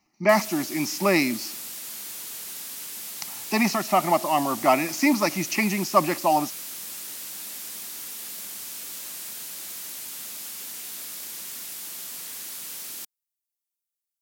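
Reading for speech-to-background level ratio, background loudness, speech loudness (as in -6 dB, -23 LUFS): 10.5 dB, -33.5 LUFS, -23.0 LUFS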